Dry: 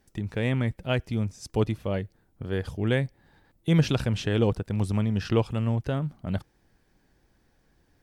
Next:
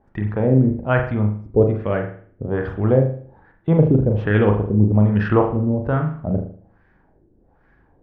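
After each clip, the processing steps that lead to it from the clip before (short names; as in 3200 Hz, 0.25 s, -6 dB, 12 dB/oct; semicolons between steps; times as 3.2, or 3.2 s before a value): LFO low-pass sine 1.2 Hz 340–1800 Hz; on a send at -3.5 dB: reverb, pre-delay 38 ms; on the sum: gain +5.5 dB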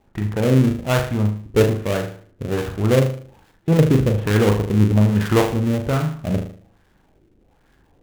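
switching dead time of 0.24 ms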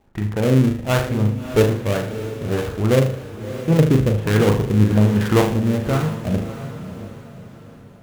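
diffused feedback echo 0.639 s, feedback 41%, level -11 dB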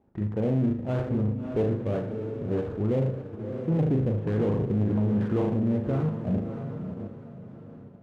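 in parallel at +2.5 dB: level quantiser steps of 11 dB; on the sum: soft clip -10.5 dBFS, distortion -10 dB; band-pass 250 Hz, Q 0.53; gain -7.5 dB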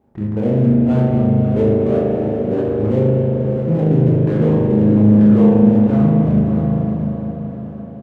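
doubler 25 ms -4.5 dB; spring tank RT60 3.6 s, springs 38 ms, chirp 65 ms, DRR 1.5 dB; warbling echo 0.216 s, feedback 76%, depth 77 cents, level -14.5 dB; gain +4.5 dB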